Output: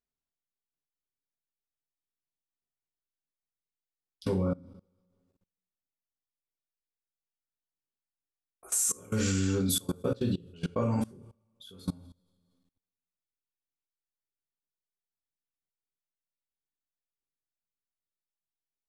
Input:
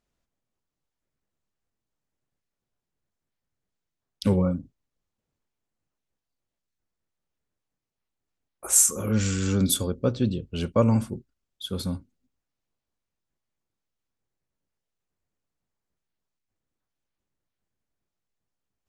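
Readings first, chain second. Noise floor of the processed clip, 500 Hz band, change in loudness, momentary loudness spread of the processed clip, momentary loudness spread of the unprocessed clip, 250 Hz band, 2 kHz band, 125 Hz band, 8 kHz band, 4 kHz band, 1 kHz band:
under -85 dBFS, -5.5 dB, -6.5 dB, 12 LU, 18 LU, -6.0 dB, -3.5 dB, -6.5 dB, -8.0 dB, -5.5 dB, -6.0 dB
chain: two-slope reverb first 0.34 s, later 1.6 s, from -25 dB, DRR -2.5 dB; level quantiser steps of 23 dB; gain -4.5 dB

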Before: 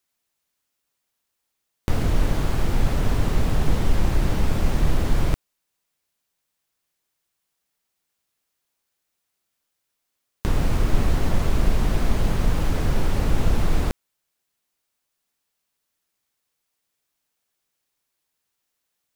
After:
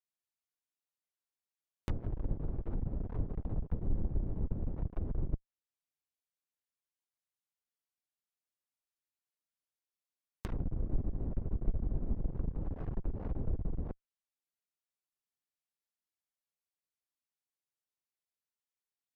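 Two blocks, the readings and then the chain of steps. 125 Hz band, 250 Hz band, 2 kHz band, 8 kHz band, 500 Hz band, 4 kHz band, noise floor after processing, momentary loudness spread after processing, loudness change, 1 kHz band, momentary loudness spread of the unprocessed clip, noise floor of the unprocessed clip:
-13.5 dB, -14.5 dB, -29.0 dB, under -30 dB, -17.0 dB, under -30 dB, under -85 dBFS, 4 LU, -14.5 dB, -23.0 dB, 4 LU, -79 dBFS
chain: one-sided clip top -26 dBFS; treble ducked by the level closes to 410 Hz, closed at -18.5 dBFS; upward expander 1.5:1, over -39 dBFS; gain -8 dB

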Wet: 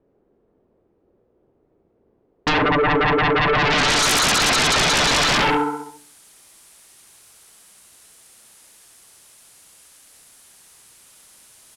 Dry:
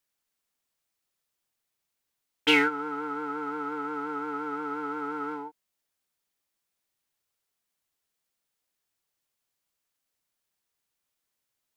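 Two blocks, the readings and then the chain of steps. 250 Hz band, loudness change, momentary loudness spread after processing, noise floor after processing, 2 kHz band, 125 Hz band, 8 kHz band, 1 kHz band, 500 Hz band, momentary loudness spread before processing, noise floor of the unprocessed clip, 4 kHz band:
+8.0 dB, +12.5 dB, 7 LU, -65 dBFS, +12.5 dB, +26.0 dB, +30.0 dB, +12.5 dB, +12.5 dB, 12 LU, -83 dBFS, +15.5 dB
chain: low-pass sweep 420 Hz -> 10000 Hz, 3.36–5.34; on a send: feedback echo 68 ms, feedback 58%, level -7 dB; on the sum: compressor 6:1, threshold -29 dBFS, peak gain reduction 12 dB; added harmonics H 5 -8 dB, 7 -20 dB, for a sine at -19 dBFS; de-hum 146.1 Hz, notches 39; sine folder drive 13 dB, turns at -20.5 dBFS; gain +6 dB

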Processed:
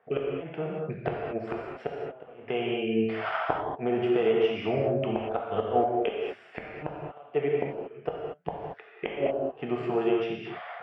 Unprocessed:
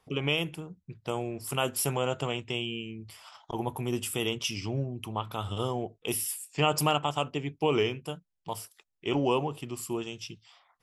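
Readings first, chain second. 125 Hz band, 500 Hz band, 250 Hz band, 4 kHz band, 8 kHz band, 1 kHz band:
-4.5 dB, +5.0 dB, +2.5 dB, -9.0 dB, under -35 dB, +1.0 dB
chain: one diode to ground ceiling -17 dBFS; recorder AGC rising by 26 dB/s; speaker cabinet 230–2100 Hz, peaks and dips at 290 Hz -8 dB, 440 Hz +6 dB, 660 Hz +9 dB, 1000 Hz -8 dB, 1600 Hz +5 dB; flipped gate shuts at -19 dBFS, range -27 dB; non-linear reverb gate 0.26 s flat, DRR -2 dB; gain +3 dB

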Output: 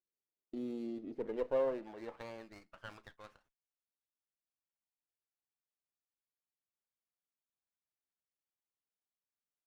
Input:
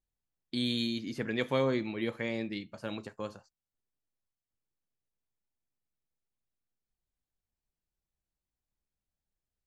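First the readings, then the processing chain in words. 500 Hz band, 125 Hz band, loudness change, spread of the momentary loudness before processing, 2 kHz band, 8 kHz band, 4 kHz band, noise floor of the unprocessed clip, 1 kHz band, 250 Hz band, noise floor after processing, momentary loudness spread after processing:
-3.0 dB, -19.0 dB, -5.5 dB, 11 LU, -15.0 dB, under -10 dB, -23.5 dB, under -85 dBFS, -6.5 dB, -10.5 dB, under -85 dBFS, 22 LU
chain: band-pass sweep 400 Hz -> 7700 Hz, 1.1–4.95; running maximum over 9 samples

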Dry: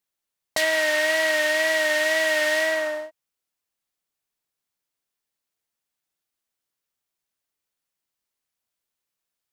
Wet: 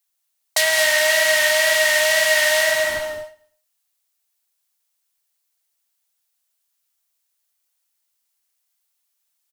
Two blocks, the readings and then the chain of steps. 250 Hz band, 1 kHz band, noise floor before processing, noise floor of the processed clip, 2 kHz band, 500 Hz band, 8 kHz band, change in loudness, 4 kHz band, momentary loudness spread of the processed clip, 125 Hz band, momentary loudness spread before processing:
-11.0 dB, +4.0 dB, -85 dBFS, -74 dBFS, +4.5 dB, +3.0 dB, +11.0 dB, +5.0 dB, +8.0 dB, 9 LU, n/a, 7 LU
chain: steep high-pass 560 Hz 36 dB/oct; high shelf 4100 Hz +10.5 dB; in parallel at -12 dB: Schmitt trigger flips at -25 dBFS; on the sum: feedback echo 0.105 s, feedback 43%, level -23 dB; non-linear reverb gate 0.26 s rising, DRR 4.5 dB; gain +1 dB

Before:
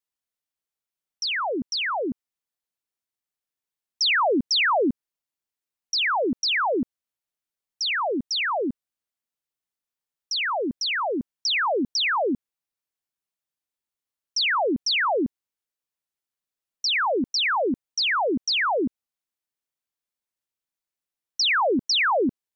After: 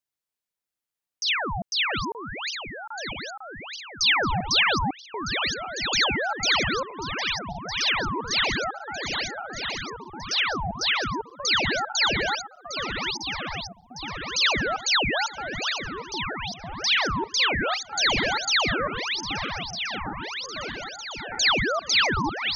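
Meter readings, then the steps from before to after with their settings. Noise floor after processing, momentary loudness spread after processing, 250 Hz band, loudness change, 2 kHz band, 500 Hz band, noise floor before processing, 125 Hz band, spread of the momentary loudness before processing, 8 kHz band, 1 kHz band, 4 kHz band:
under -85 dBFS, 12 LU, -4.5 dB, -1.5 dB, +1.5 dB, -4.5 dB, under -85 dBFS, +13.0 dB, 9 LU, n/a, -1.0 dB, +2.0 dB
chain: regenerating reverse delay 0.628 s, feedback 77%, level -8.5 dB; in parallel at 0 dB: compressor, threshold -32 dBFS, peak gain reduction 13 dB; on the sum: dynamic EQ 2900 Hz, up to +7 dB, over -35 dBFS, Q 1.3; ring modulator with a swept carrier 790 Hz, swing 45%, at 0.33 Hz; gain -3 dB

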